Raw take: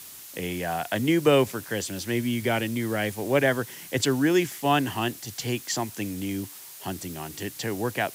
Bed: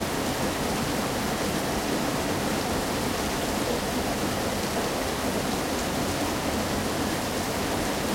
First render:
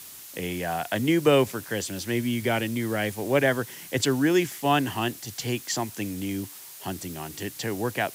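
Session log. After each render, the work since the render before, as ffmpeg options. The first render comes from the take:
-af anull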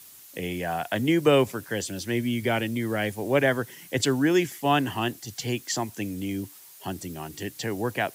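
-af "afftdn=nr=7:nf=-44"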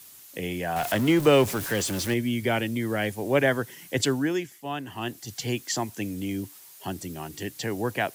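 -filter_complex "[0:a]asettb=1/sr,asplit=3[a][b][c];[a]atrim=end=0.764[d];[b]atrim=start=0.76:end=2.14,asetpts=PTS-STARTPTS,afade=t=in:d=0.004:c=qsin,afade=t=out:st=1.376:d=0.004:c=qsin,aeval=exprs='val(0)+0.5*0.0355*sgn(val(0))':c=same[e];[c]atrim=start=2.136[f];[d][e]acrossfade=d=0.004:c1=hsin:c2=qsin[g];[g][f]acrossfade=d=0.004:c1=qsin:c2=hsin,asplit=3[h][i][j];[h]atrim=end=4.48,asetpts=PTS-STARTPTS,afade=t=out:st=4.04:d=0.44:silence=0.298538[k];[i]atrim=start=4.48:end=4.86,asetpts=PTS-STARTPTS,volume=-10.5dB[l];[j]atrim=start=4.86,asetpts=PTS-STARTPTS,afade=t=in:d=0.44:silence=0.298538[m];[k][l][m]concat=n=3:v=0:a=1"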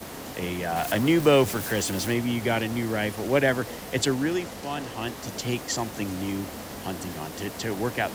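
-filter_complex "[1:a]volume=-11dB[a];[0:a][a]amix=inputs=2:normalize=0"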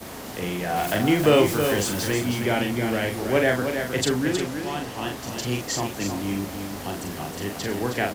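-filter_complex "[0:a]asplit=2[a][b];[b]adelay=40,volume=-4.5dB[c];[a][c]amix=inputs=2:normalize=0,asplit=2[d][e];[e]aecho=0:1:316:0.447[f];[d][f]amix=inputs=2:normalize=0"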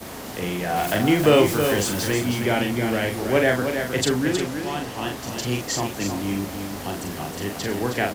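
-af "volume=1.5dB"

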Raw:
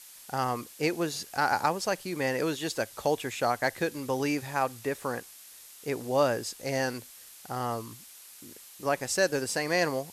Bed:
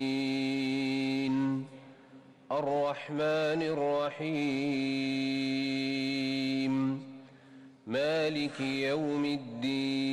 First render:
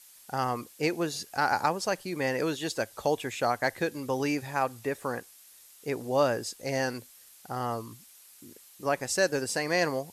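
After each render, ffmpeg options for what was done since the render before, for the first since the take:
-af "afftdn=nr=6:nf=-50"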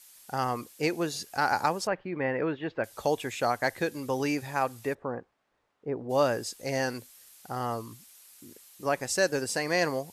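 -filter_complex "[0:a]asettb=1/sr,asplit=3[a][b][c];[a]atrim=end=1.874[d];[b]atrim=start=1.87:end=2.84,asetpts=PTS-STARTPTS,afade=t=in:d=0.004:c=qsin,afade=t=out:st=0.966:d=0.004:c=qsin,lowpass=f=2.4k:w=0.5412,lowpass=f=2.4k:w=1.3066[e];[c]atrim=start=2.836[f];[d][e]acrossfade=d=0.004:c1=hsin:c2=qsin[g];[g][f]acrossfade=d=0.004:c1=qsin:c2=hsin,asplit=3[h][i][j];[h]afade=t=out:st=4.93:d=0.02[k];[i]lowpass=1k,afade=t=in:st=4.93:d=0.02,afade=t=out:st=6.09:d=0.02[l];[j]afade=t=in:st=6.09:d=0.02[m];[k][l][m]amix=inputs=3:normalize=0"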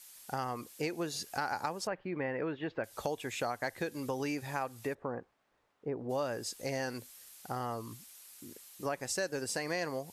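-af "acompressor=threshold=-34dB:ratio=3"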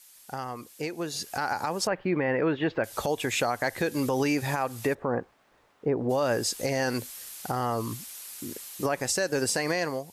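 -af "dynaudnorm=f=960:g=3:m=12dB,alimiter=limit=-16.5dB:level=0:latency=1:release=80"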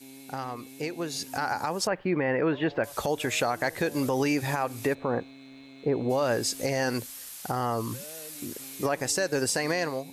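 -filter_complex "[1:a]volume=-17dB[a];[0:a][a]amix=inputs=2:normalize=0"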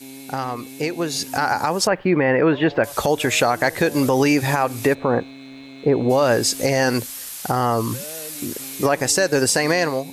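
-af "volume=9dB"

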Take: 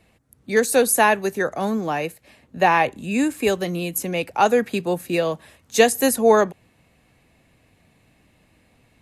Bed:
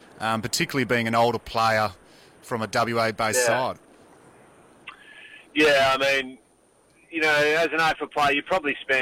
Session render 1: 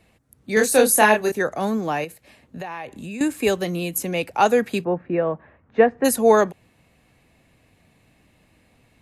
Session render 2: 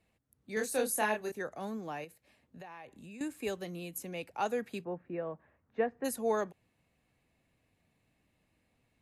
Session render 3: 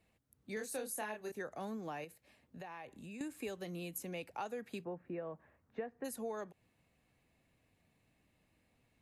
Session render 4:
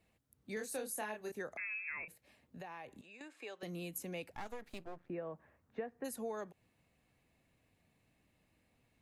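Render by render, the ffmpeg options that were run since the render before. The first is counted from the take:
-filter_complex "[0:a]asettb=1/sr,asplit=3[a][b][c];[a]atrim=end=0.544[d];[b]atrim=start=0.54:end=1.32,asetpts=PTS-STARTPTS,afade=t=in:d=0.004:c=qsin,afade=t=out:st=0.776:d=0.004:c=qsin,asplit=2[e][f];[f]adelay=28,volume=-3.5dB[g];[e][g]amix=inputs=2:normalize=0,atrim=end_sample=34398[h];[c]atrim=start=1.316[i];[d][h]acrossfade=d=0.004:c1=hsin:c2=qsin[j];[j][i]acrossfade=d=0.004:c1=qsin:c2=hsin,asettb=1/sr,asplit=3[k][l][m];[k]atrim=end=2.044[n];[l]atrim=start=2.04:end=3.21,asetpts=PTS-STARTPTS,afade=t=in:d=0.004:c=qsin,afade=t=out:st=1.166:d=0.004:c=qsin,acompressor=threshold=-30dB:ratio=6:attack=3.2:release=140:knee=1:detection=peak[o];[m]atrim=start=3.206[p];[n][o]acrossfade=d=0.004:c1=hsin:c2=qsin[q];[q][p]acrossfade=d=0.004:c1=qsin:c2=hsin,asplit=3[r][s][t];[r]afade=t=out:st=4.83:d=0.02[u];[s]lowpass=f=1.8k:w=0.5412,lowpass=f=1.8k:w=1.3066,afade=t=in:st=4.83:d=0.02,afade=t=out:st=6.04:d=0.02[v];[t]afade=t=in:st=6.04:d=0.02[w];[u][v][w]amix=inputs=3:normalize=0"
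-af "volume=-16dB"
-af "acompressor=threshold=-39dB:ratio=6"
-filter_complex "[0:a]asettb=1/sr,asplit=3[a][b][c];[a]atrim=end=1.574[d];[b]atrim=start=1.57:end=2.08,asetpts=PTS-STARTPTS,afade=t=in:d=0.004:c=qsin,afade=t=out:st=0.506:d=0.004:c=qsin,lowpass=f=2.4k:t=q:w=0.5098,lowpass=f=2.4k:t=q:w=0.6013,lowpass=f=2.4k:t=q:w=0.9,lowpass=f=2.4k:t=q:w=2.563,afreqshift=-2800[e];[c]atrim=start=2.076[f];[d][e]acrossfade=d=0.004:c1=hsin:c2=qsin[g];[g][f]acrossfade=d=0.004:c1=qsin:c2=hsin,asettb=1/sr,asplit=3[h][i][j];[h]atrim=end=3.014[k];[i]atrim=start=3.01:end=3.63,asetpts=PTS-STARTPTS,afade=t=in:d=0.004:c=qsin,afade=t=out:st=0.616:d=0.004:c=qsin,highpass=580,lowpass=4.4k[l];[j]atrim=start=3.626[m];[k][l]acrossfade=d=0.004:c1=hsin:c2=qsin[n];[n][m]acrossfade=d=0.004:c1=qsin:c2=hsin,asettb=1/sr,asplit=3[o][p][q];[o]atrim=end=4.354[r];[p]atrim=start=4.35:end=5.1,asetpts=PTS-STARTPTS,afade=t=in:d=0.004:c=qsin,afade=t=out:st=0.746:d=0.004:c=qsin,aeval=exprs='max(val(0),0)':c=same[s];[q]atrim=start=5.096[t];[r][s]acrossfade=d=0.004:c1=hsin:c2=qsin[u];[u][t]acrossfade=d=0.004:c1=qsin:c2=hsin"

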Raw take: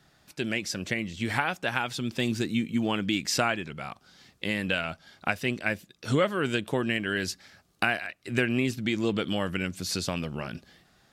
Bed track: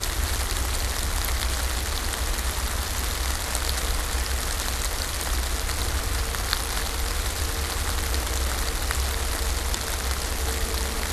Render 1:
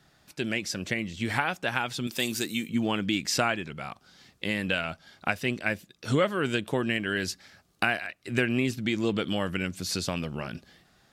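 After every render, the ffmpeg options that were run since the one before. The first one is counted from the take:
-filter_complex "[0:a]asettb=1/sr,asplit=3[a][b][c];[a]atrim=end=2.074[d];[b]atrim=start=2.07:end=2.69,asetpts=PTS-STARTPTS,afade=t=in:d=0.004:c=qsin,afade=t=out:st=0.616:d=0.004:c=qsin,aemphasis=mode=production:type=bsi[e];[c]atrim=start=2.686[f];[d][e]acrossfade=d=0.004:c1=hsin:c2=qsin[g];[g][f]acrossfade=d=0.004:c1=qsin:c2=hsin"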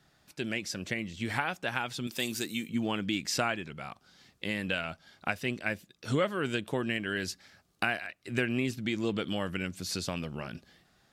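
-af "volume=-4dB"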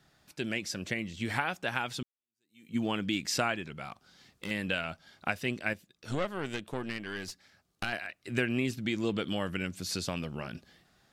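-filter_complex "[0:a]asettb=1/sr,asplit=3[a][b][c];[a]atrim=end=3.854[d];[b]atrim=start=3.85:end=4.51,asetpts=PTS-STARTPTS,afade=t=in:d=0.004:c=qsin,afade=t=out:st=0.656:d=0.004:c=qsin,asoftclip=type=hard:threshold=-32dB[e];[c]atrim=start=4.506[f];[d][e]acrossfade=d=0.004:c1=hsin:c2=qsin[g];[g][f]acrossfade=d=0.004:c1=qsin:c2=hsin,asettb=1/sr,asplit=3[h][i][j];[h]atrim=end=5.734[k];[i]atrim=start=5.73:end=7.93,asetpts=PTS-STARTPTS,afade=t=in:d=0.004:c=qsin,afade=t=out:st=2.196:d=0.004:c=qsin,aeval=exprs='(tanh(14.1*val(0)+0.8)-tanh(0.8))/14.1':c=same[l];[j]atrim=start=7.926[m];[k][l]acrossfade=d=0.004:c1=hsin:c2=qsin[n];[n][m]acrossfade=d=0.004:c1=qsin:c2=hsin,asplit=2[o][p];[o]atrim=end=2.03,asetpts=PTS-STARTPTS,afade=t=out:st=2.026:d=0.004:c=hsin[q];[p]atrim=start=2.03,asetpts=PTS-STARTPTS,afade=t=in:d=0.73:c=exp[r];[q][r]concat=n=2:v=0:a=1"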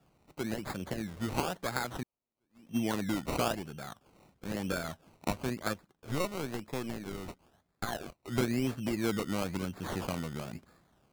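-filter_complex "[0:a]acrossover=split=360|3200[a][b][c];[b]adynamicsmooth=sensitivity=1:basefreq=2.2k[d];[a][d][c]amix=inputs=3:normalize=0,acrusher=samples=21:mix=1:aa=0.000001:lfo=1:lforange=12.6:lforate=1"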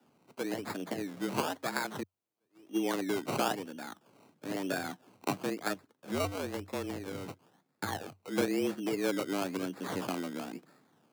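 -af "afreqshift=93"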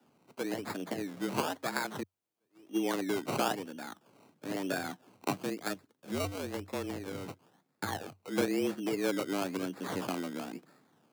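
-filter_complex "[0:a]asettb=1/sr,asplit=3[a][b][c];[a]atrim=end=5.364[d];[b]atrim=start=5.36:end=6.51,asetpts=PTS-STARTPTS,afade=t=in:d=0.004:c=qsin,afade=t=out:st=1.146:d=0.004:c=qsin,equalizer=f=1k:w=0.62:g=-4[e];[c]atrim=start=6.506[f];[d][e]acrossfade=d=0.004:c1=hsin:c2=qsin[g];[g][f]acrossfade=d=0.004:c1=qsin:c2=hsin"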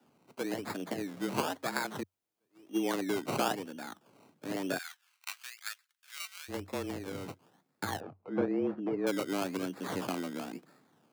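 -filter_complex "[0:a]asplit=3[a][b][c];[a]afade=t=out:st=4.77:d=0.02[d];[b]highpass=f=1.5k:w=0.5412,highpass=f=1.5k:w=1.3066,afade=t=in:st=4.77:d=0.02,afade=t=out:st=6.48:d=0.02[e];[c]afade=t=in:st=6.48:d=0.02[f];[d][e][f]amix=inputs=3:normalize=0,asettb=1/sr,asplit=3[g][h][i];[g]atrim=end=8.004[j];[h]atrim=start=8:end=9.07,asetpts=PTS-STARTPTS,afade=t=in:d=0.004:c=qsin,afade=t=out:st=1.066:d=0.004:c=qsin,lowpass=1.2k[k];[i]atrim=start=9.066[l];[j][k]acrossfade=d=0.004:c1=hsin:c2=qsin[m];[m][l]acrossfade=d=0.004:c1=qsin:c2=hsin"

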